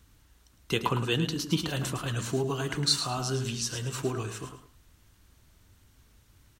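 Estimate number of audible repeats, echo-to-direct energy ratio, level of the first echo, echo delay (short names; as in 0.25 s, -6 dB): 2, -8.5 dB, -9.0 dB, 0.108 s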